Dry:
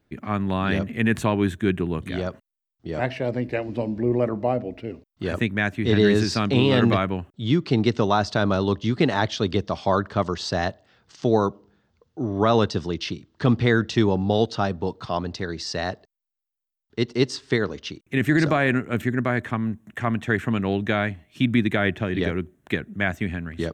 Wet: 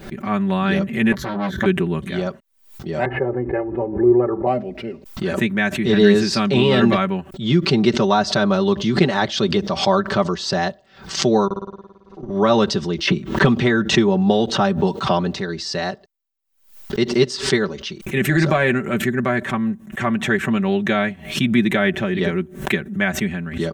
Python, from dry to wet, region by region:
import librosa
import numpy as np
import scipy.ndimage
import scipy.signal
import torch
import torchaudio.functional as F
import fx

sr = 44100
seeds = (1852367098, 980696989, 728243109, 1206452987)

y = fx.chain(x, sr, fx.fixed_phaser(hz=2600.0, stages=6),
    fx.doubler(ms=16.0, db=-3.5),
    fx.transformer_sat(knee_hz=1100.0), at=(1.12, 1.66))
y = fx.chain(y, sr, fx.lowpass(hz=1500.0, slope=24),
    fx.comb(ms=2.4, depth=0.86), at=(3.05, 4.47))
y = fx.chain(y, sr, fx.lowpass(hz=5300.0, slope=12),
    fx.level_steps(step_db=24),
    fx.room_flutter(wall_m=9.5, rt60_s=1.1), at=(11.45, 12.3))
y = fx.chain(y, sr, fx.highpass(hz=49.0, slope=12),
    fx.peak_eq(hz=4800.0, db=-7.0, octaves=0.4),
    fx.band_squash(depth_pct=100), at=(13.07, 15.37))
y = y + 0.79 * np.pad(y, (int(5.2 * sr / 1000.0), 0))[:len(y)]
y = fx.pre_swell(y, sr, db_per_s=110.0)
y = F.gain(torch.from_numpy(y), 1.5).numpy()